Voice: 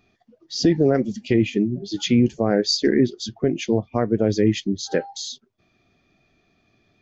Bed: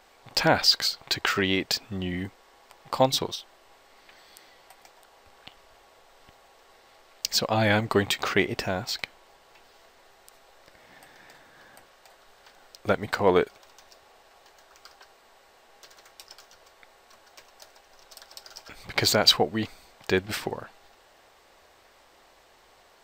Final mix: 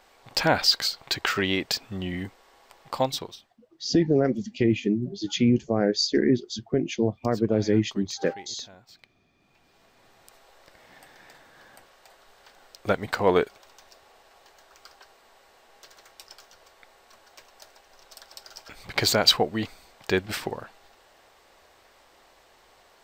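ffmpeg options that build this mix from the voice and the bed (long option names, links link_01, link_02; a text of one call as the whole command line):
ffmpeg -i stem1.wav -i stem2.wav -filter_complex "[0:a]adelay=3300,volume=-3.5dB[link_01];[1:a]volume=21.5dB,afade=type=out:start_time=2.77:duration=0.8:silence=0.0841395,afade=type=in:start_time=9.34:duration=1.02:silence=0.0794328[link_02];[link_01][link_02]amix=inputs=2:normalize=0" out.wav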